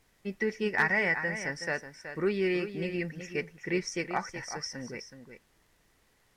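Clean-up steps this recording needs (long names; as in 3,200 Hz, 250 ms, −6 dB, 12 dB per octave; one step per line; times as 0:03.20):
clipped peaks rebuilt −16.5 dBFS
click removal
downward expander −60 dBFS, range −21 dB
echo removal 373 ms −10 dB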